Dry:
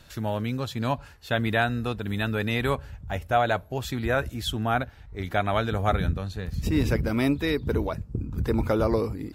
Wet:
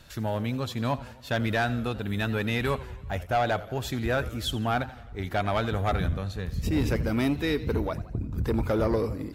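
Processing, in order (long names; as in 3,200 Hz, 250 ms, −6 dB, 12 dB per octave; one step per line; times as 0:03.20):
soft clipping −18 dBFS, distortion −16 dB
feedback echo with a swinging delay time 86 ms, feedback 58%, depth 145 cents, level −17 dB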